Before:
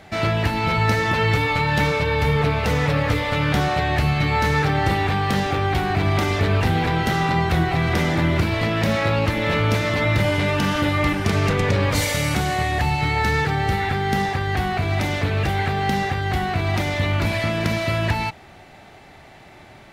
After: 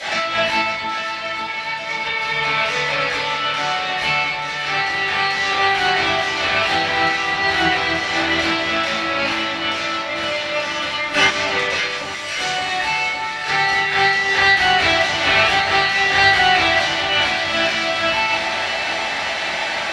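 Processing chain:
meter weighting curve ITU-R 468
compressor whose output falls as the input rises −28 dBFS, ratio −0.5
0:11.74–0:12.37: guitar amp tone stack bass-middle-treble 10-0-10
delay that swaps between a low-pass and a high-pass 283 ms, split 1,200 Hz, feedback 82%, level −7 dB
convolution reverb, pre-delay 3 ms, DRR −16 dB
level −4.5 dB

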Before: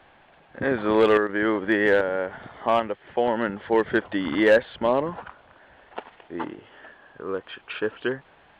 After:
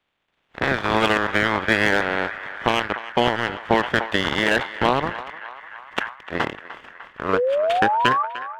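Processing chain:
ceiling on every frequency bin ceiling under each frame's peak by 19 dB
brickwall limiter −15 dBFS, peak gain reduction 10 dB
transient designer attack +4 dB, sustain −4 dB
automatic gain control gain up to 11.5 dB
power curve on the samples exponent 1.4
sound drawn into the spectrogram rise, 0:07.33–0:08.23, 450–1,200 Hz −19 dBFS
on a send: feedback echo with a band-pass in the loop 300 ms, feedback 77%, band-pass 1,500 Hz, level −12.5 dB
on the sum: level that may fall only so fast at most 140 dB per second
level −1 dB

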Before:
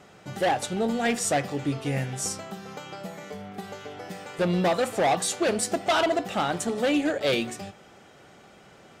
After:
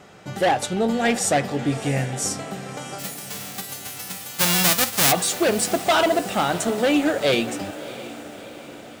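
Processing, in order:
0:02.98–0:05.11: spectral envelope flattened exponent 0.1
feedback delay with all-pass diffusion 647 ms, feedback 56%, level −15 dB
level +4.5 dB

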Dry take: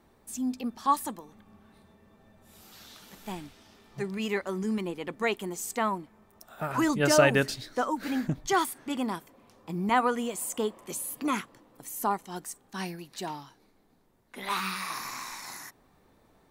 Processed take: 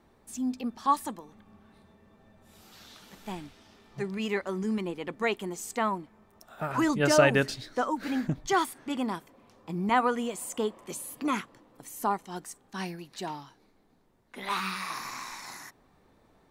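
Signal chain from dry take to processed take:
high-shelf EQ 9,900 Hz −9 dB

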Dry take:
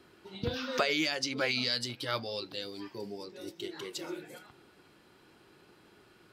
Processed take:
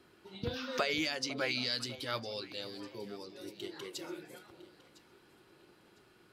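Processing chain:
parametric band 11,000 Hz +2.5 dB 0.39 octaves
on a send: delay that swaps between a low-pass and a high-pass 503 ms, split 990 Hz, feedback 54%, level −13.5 dB
on the sum: level −3.5 dB

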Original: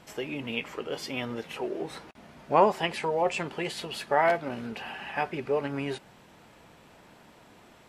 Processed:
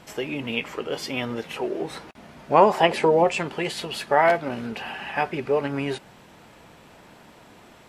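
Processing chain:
0:02.71–0:03.24: parametric band 1,000 Hz → 200 Hz +10 dB 1.7 octaves
level +5 dB

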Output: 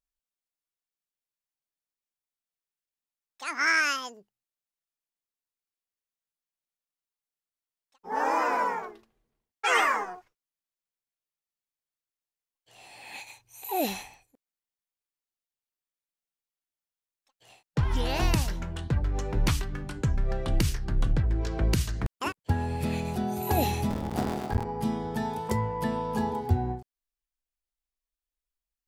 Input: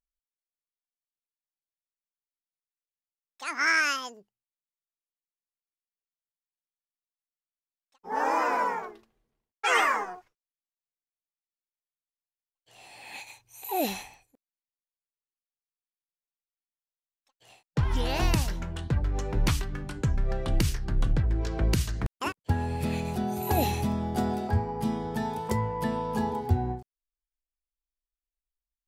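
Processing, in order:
0:23.90–0:24.65: sub-harmonics by changed cycles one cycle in 3, muted

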